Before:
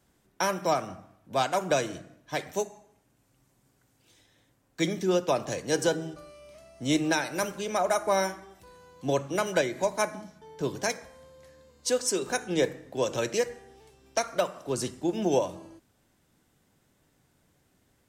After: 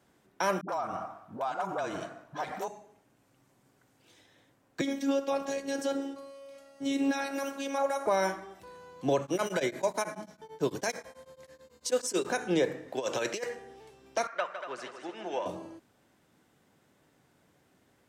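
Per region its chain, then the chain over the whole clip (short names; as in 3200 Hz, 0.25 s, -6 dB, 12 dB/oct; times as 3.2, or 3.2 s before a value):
0.61–2.68 band shelf 1000 Hz +9 dB 1.3 oct + compressor, threshold -34 dBFS + dispersion highs, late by 78 ms, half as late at 380 Hz
4.81–8.06 robotiser 276 Hz + high shelf 11000 Hz +5.5 dB
9.22–12.25 high shelf 5400 Hz +8.5 dB + beating tremolo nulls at 9.1 Hz
12.88–13.55 low shelf 400 Hz -10.5 dB + negative-ratio compressor -33 dBFS, ratio -0.5
14.27–15.46 band-pass 1700 Hz, Q 1.5 + multi-head echo 79 ms, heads second and third, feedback 43%, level -10 dB
whole clip: HPF 220 Hz 6 dB/oct; limiter -21.5 dBFS; high shelf 3900 Hz -8.5 dB; gain +4.5 dB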